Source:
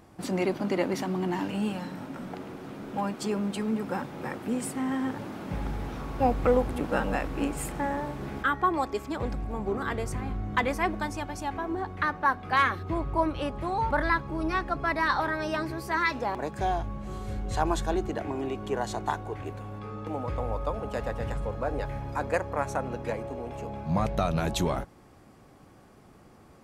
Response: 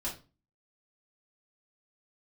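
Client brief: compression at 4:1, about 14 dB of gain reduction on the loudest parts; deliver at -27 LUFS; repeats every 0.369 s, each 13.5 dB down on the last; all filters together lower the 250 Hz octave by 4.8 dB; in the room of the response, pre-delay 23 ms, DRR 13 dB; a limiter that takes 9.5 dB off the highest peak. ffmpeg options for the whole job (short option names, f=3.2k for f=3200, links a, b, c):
-filter_complex "[0:a]equalizer=f=250:t=o:g=-6.5,acompressor=threshold=-37dB:ratio=4,alimiter=level_in=7dB:limit=-24dB:level=0:latency=1,volume=-7dB,aecho=1:1:369|738:0.211|0.0444,asplit=2[a][b];[1:a]atrim=start_sample=2205,adelay=23[c];[b][c]afir=irnorm=-1:irlink=0,volume=-15.5dB[d];[a][d]amix=inputs=2:normalize=0,volume=14.5dB"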